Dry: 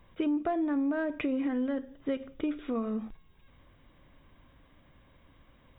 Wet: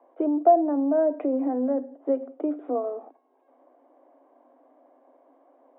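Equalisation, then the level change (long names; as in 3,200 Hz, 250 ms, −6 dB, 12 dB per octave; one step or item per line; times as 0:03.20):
Chebyshev high-pass filter 250 Hz, order 10
low-pass with resonance 720 Hz, resonance Q 4.9
+3.0 dB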